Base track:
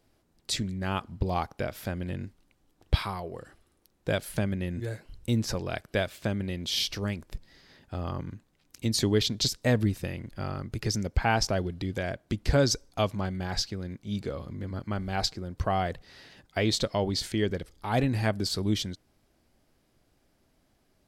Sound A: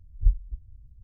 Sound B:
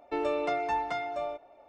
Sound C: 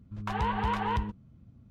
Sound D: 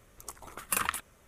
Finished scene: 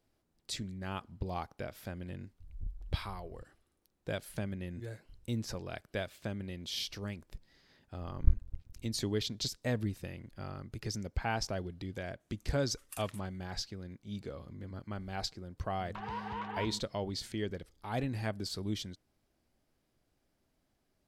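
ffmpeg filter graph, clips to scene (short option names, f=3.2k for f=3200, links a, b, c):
-filter_complex "[1:a]asplit=2[a][b];[0:a]volume=-9dB[c];[a]acompressor=threshold=-35dB:ratio=6:attack=3.2:release=140:knee=1:detection=peak[d];[b]aeval=exprs='max(val(0),0)':c=same[e];[4:a]bandpass=f=6.5k:t=q:w=0.58:csg=0[f];[3:a]highpass=110,lowpass=4.2k[g];[d]atrim=end=1.03,asetpts=PTS-STARTPTS,volume=-1dB,afade=t=in:d=0.004:c=hsin,afade=t=out:st=1.026:d=0.004:c=hsin,adelay=2400[h];[e]atrim=end=1.03,asetpts=PTS-STARTPTS,volume=-1.5dB,afade=t=in:d=0.004:c=hsin,afade=t=out:st=1.026:d=0.004:c=hsin,adelay=8010[i];[f]atrim=end=1.27,asetpts=PTS-STARTPTS,volume=-15dB,afade=t=in:d=0.004:c=hsin,afade=t=out:st=1.266:d=0.004:c=hsin,adelay=538020S[j];[g]atrim=end=1.7,asetpts=PTS-STARTPTS,volume=-9.5dB,afade=t=in:d=0.004:c=hsin,afade=t=out:st=1.696:d=0.004:c=hsin,adelay=15680[k];[c][h][i][j][k]amix=inputs=5:normalize=0"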